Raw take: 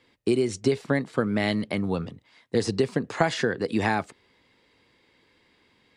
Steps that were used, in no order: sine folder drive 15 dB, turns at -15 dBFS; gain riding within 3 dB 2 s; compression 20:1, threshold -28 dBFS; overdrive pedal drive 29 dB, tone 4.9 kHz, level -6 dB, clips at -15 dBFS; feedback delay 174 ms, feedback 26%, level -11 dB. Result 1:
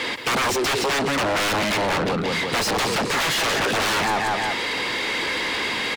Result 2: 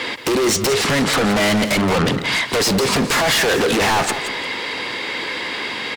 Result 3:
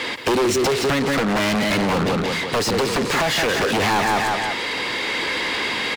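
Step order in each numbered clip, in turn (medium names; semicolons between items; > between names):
feedback delay > sine folder > compression > gain riding > overdrive pedal; gain riding > overdrive pedal > compression > sine folder > feedback delay; feedback delay > compression > sine folder > overdrive pedal > gain riding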